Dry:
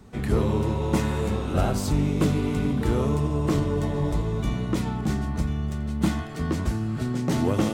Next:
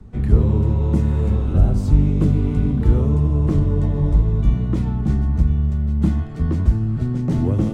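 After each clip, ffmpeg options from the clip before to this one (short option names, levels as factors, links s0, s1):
-filter_complex "[0:a]aemphasis=mode=reproduction:type=riaa,acrossover=split=290|560|5600[s0][s1][s2][s3];[s2]alimiter=level_in=1.26:limit=0.0631:level=0:latency=1:release=299,volume=0.794[s4];[s0][s1][s4][s3]amix=inputs=4:normalize=0,highshelf=f=7000:g=10.5,volume=0.631"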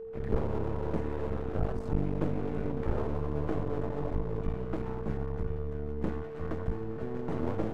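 -filter_complex "[0:a]acrossover=split=320 2200:gain=0.224 1 0.141[s0][s1][s2];[s0][s1][s2]amix=inputs=3:normalize=0,aeval=exprs='max(val(0),0)':c=same,aeval=exprs='val(0)+0.0126*sin(2*PI*450*n/s)':c=same,volume=0.891"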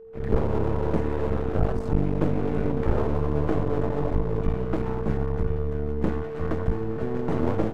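-af "dynaudnorm=f=120:g=3:m=3.98,volume=0.631"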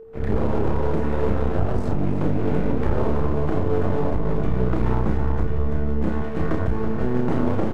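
-filter_complex "[0:a]aecho=1:1:328:0.316,alimiter=limit=0.168:level=0:latency=1:release=120,asplit=2[s0][s1];[s1]adelay=32,volume=0.562[s2];[s0][s2]amix=inputs=2:normalize=0,volume=1.68"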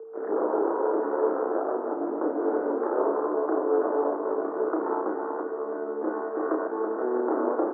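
-af "asuperpass=centerf=670:order=12:qfactor=0.56,volume=1.12"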